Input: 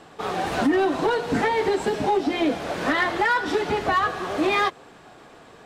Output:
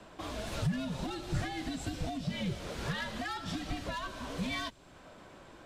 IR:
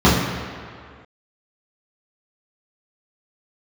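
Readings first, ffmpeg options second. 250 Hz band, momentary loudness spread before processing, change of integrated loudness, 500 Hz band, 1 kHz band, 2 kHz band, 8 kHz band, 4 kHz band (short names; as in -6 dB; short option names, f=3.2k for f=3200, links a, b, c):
-12.0 dB, 5 LU, -14.0 dB, -20.0 dB, -18.5 dB, -16.0 dB, -6.0 dB, -8.5 dB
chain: -filter_complex "[0:a]afreqshift=-120,acrossover=split=150|3000[a][b][c];[b]acompressor=threshold=-37dB:ratio=3[d];[a][d][c]amix=inputs=3:normalize=0,volume=-5.5dB"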